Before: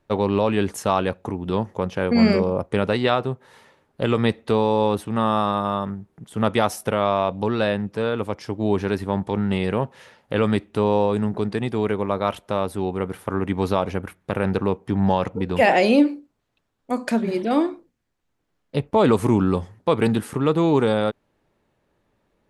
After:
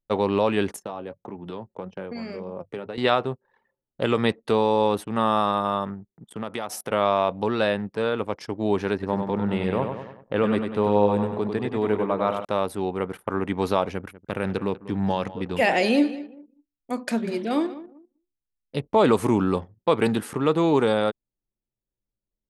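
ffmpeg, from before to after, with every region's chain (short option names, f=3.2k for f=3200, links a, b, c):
-filter_complex "[0:a]asettb=1/sr,asplit=3[a][b][c];[a]atrim=end=0.764[d];[b]atrim=start=0.76:end=2.98,asetpts=PTS-STARTPTS,afade=t=in:d=0.004:c=qsin,afade=t=out:st=2.216:d=0.004:c=qsin,bandreject=f=50:t=h:w=6,bandreject=f=100:t=h:w=6,bandreject=f=150:t=h:w=6,acrossover=split=95|760[e][f][g];[e]acompressor=threshold=-45dB:ratio=4[h];[f]acompressor=threshold=-26dB:ratio=4[i];[g]acompressor=threshold=-39dB:ratio=4[j];[h][i][j]amix=inputs=3:normalize=0,flanger=delay=4.7:depth=3.2:regen=61:speed=1.7:shape=triangular[k];[c]atrim=start=2.976[l];[d][k]acrossfade=d=0.004:c1=hsin:c2=qsin[m];[m][l]acrossfade=d=0.004:c1=qsin:c2=hsin,asettb=1/sr,asplit=3[n][o][p];[n]atrim=end=6.124[q];[o]atrim=start=6.12:end=6.91,asetpts=PTS-STARTPTS,afade=t=in:d=0.004:c=qsin,afade=t=out:st=0.786:d=0.004:c=qsin,highpass=94,acompressor=threshold=-25dB:ratio=5:attack=3.2:release=140:knee=1:detection=peak[r];[p]atrim=start=6.906[s];[q][r]acrossfade=d=0.004:c1=hsin:c2=qsin[t];[t][s]acrossfade=d=0.004:c1=qsin:c2=hsin,asettb=1/sr,asplit=3[u][v][w];[u]atrim=end=8.934[x];[v]atrim=start=8.93:end=12.45,asetpts=PTS-STARTPTS,afade=t=in:d=0.004:c=qsin,afade=t=out:st=3.516:d=0.004:c=qsin,highshelf=f=2.5k:g=-9.5,aecho=1:1:97|194|291|388|485|582:0.501|0.251|0.125|0.0626|0.0313|0.0157,atrim=end_sample=155232[y];[w]atrim=start=12.446[z];[x][y]acrossfade=d=0.004:c1=hsin:c2=qsin[aa];[aa][z]acrossfade=d=0.004:c1=qsin:c2=hsin,asettb=1/sr,asplit=3[ab][ac][ad];[ab]atrim=end=13.894[ae];[ac]atrim=start=13.89:end=18.84,asetpts=PTS-STARTPTS,afade=t=in:d=0.004:c=qsin,afade=t=out:st=4.946:d=0.004:c=qsin,equalizer=f=820:w=0.57:g=-5,aecho=1:1:194|388|582:0.158|0.0475|0.0143,atrim=end_sample=218295[af];[ad]atrim=start=18.836[ag];[ae][af]acrossfade=d=0.004:c1=hsin:c2=qsin[ah];[ah][ag]acrossfade=d=0.004:c1=qsin:c2=hsin,anlmdn=0.1,lowshelf=f=150:g=-10"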